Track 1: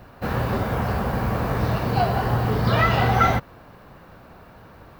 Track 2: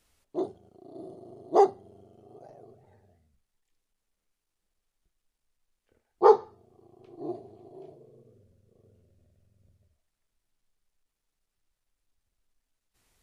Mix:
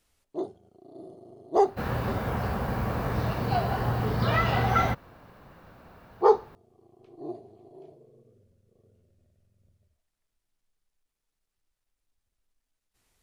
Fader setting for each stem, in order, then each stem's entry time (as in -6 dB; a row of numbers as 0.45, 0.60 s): -5.5, -1.5 dB; 1.55, 0.00 s